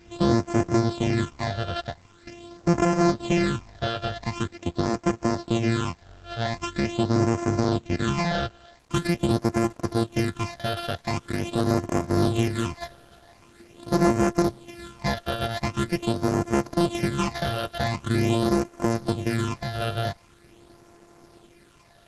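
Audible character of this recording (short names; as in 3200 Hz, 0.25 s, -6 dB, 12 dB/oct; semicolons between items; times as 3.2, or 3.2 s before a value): a buzz of ramps at a fixed pitch in blocks of 128 samples; phasing stages 8, 0.44 Hz, lowest notch 280–3700 Hz; a quantiser's noise floor 10-bit, dither none; Opus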